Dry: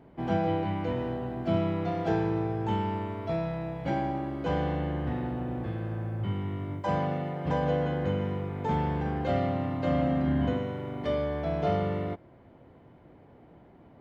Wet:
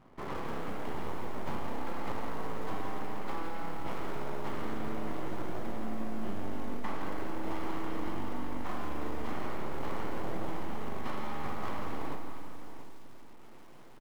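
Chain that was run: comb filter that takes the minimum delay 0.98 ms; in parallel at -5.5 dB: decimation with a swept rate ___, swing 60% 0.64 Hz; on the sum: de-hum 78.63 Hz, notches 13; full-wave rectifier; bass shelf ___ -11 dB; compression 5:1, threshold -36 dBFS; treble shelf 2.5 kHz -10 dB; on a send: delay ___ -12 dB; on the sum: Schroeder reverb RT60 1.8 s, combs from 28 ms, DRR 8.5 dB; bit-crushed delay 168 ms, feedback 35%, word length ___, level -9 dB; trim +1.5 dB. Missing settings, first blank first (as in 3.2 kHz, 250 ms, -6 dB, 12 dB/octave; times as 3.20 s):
41×, 140 Hz, 685 ms, 9-bit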